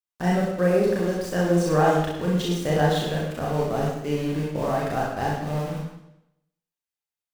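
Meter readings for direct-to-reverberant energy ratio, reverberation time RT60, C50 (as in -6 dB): -5.0 dB, 0.80 s, 0.5 dB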